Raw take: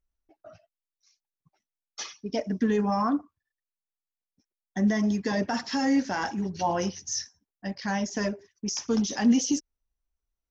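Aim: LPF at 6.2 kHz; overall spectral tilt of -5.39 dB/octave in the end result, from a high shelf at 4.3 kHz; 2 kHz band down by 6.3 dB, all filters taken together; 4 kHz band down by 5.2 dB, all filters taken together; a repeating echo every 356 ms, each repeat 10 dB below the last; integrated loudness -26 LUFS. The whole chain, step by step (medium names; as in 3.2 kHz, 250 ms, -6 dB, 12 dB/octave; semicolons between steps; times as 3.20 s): low-pass 6.2 kHz; peaking EQ 2 kHz -7 dB; peaking EQ 4 kHz -8 dB; treble shelf 4.3 kHz +4 dB; feedback delay 356 ms, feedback 32%, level -10 dB; trim +2.5 dB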